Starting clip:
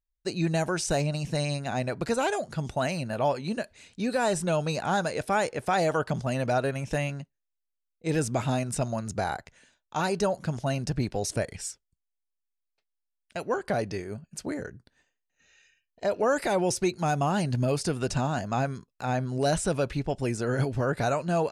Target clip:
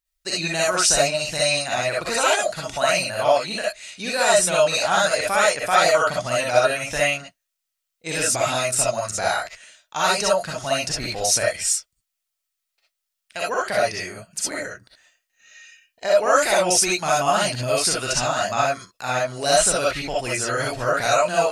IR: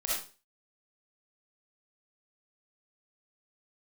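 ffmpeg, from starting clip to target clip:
-filter_complex "[0:a]tiltshelf=f=730:g=-8.5[s0];[1:a]atrim=start_sample=2205,atrim=end_sample=3528[s1];[s0][s1]afir=irnorm=-1:irlink=0,volume=1.33"

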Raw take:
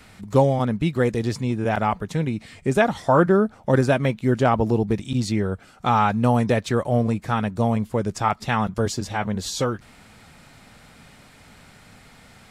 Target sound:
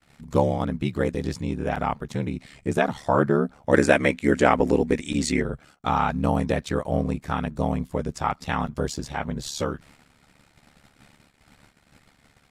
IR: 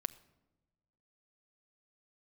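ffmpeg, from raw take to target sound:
-filter_complex "[0:a]aeval=exprs='val(0)*sin(2*PI*36*n/s)':c=same,agate=range=0.0562:threshold=0.00316:ratio=16:detection=peak,asplit=3[s0][s1][s2];[s0]afade=t=out:st=3.71:d=0.02[s3];[s1]equalizer=f=125:t=o:w=1:g=-7,equalizer=f=250:t=o:w=1:g=5,equalizer=f=500:t=o:w=1:g=5,equalizer=f=2000:t=o:w=1:g=12,equalizer=f=8000:t=o:w=1:g=11,afade=t=in:st=3.71:d=0.02,afade=t=out:st=5.41:d=0.02[s4];[s2]afade=t=in:st=5.41:d=0.02[s5];[s3][s4][s5]amix=inputs=3:normalize=0,volume=0.891"

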